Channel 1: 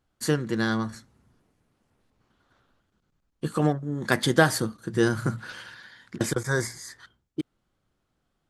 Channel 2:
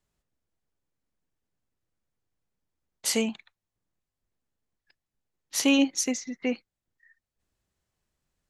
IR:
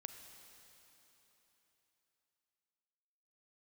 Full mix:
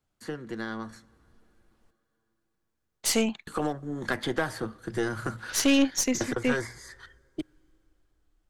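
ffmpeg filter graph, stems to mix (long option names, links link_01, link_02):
-filter_complex "[0:a]asubboost=boost=11:cutoff=51,acrossover=split=94|210|3200[link_01][link_02][link_03][link_04];[link_01]acompressor=threshold=-54dB:ratio=4[link_05];[link_02]acompressor=threshold=-42dB:ratio=4[link_06];[link_03]acompressor=threshold=-26dB:ratio=4[link_07];[link_04]acompressor=threshold=-50dB:ratio=4[link_08];[link_05][link_06][link_07][link_08]amix=inputs=4:normalize=0,volume=-5dB,asplit=3[link_09][link_10][link_11];[link_09]atrim=end=1.91,asetpts=PTS-STARTPTS,afade=type=out:start_time=1.906:duration=0.004:curve=hsin[link_12];[link_10]atrim=start=1.91:end=3.47,asetpts=PTS-STARTPTS,volume=0[link_13];[link_11]atrim=start=3.47,asetpts=PTS-STARTPTS,afade=type=in:duration=0.004:curve=hsin[link_14];[link_12][link_13][link_14]concat=n=3:v=0:a=1,asplit=2[link_15][link_16];[link_16]volume=-15.5dB[link_17];[1:a]volume=-3.5dB[link_18];[2:a]atrim=start_sample=2205[link_19];[link_17][link_19]afir=irnorm=-1:irlink=0[link_20];[link_15][link_18][link_20]amix=inputs=3:normalize=0,dynaudnorm=framelen=270:gausssize=9:maxgain=7dB,aeval=exprs='(tanh(6.31*val(0)+0.45)-tanh(0.45))/6.31':channel_layout=same"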